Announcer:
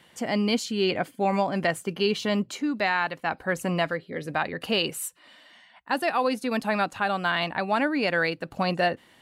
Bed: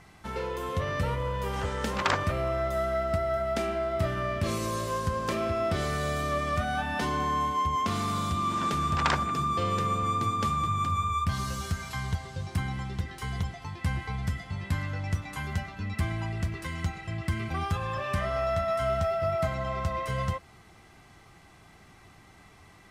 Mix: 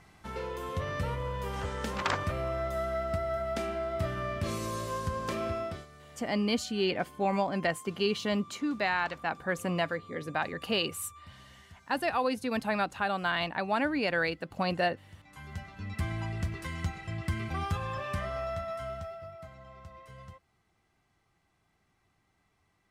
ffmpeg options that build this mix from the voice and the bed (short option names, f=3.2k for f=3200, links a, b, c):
-filter_complex "[0:a]adelay=6000,volume=-4.5dB[a];[1:a]volume=17dB,afade=t=out:st=5.52:d=0.34:silence=0.105925,afade=t=in:st=15.15:d=1.03:silence=0.0891251,afade=t=out:st=17.74:d=1.6:silence=0.149624[b];[a][b]amix=inputs=2:normalize=0"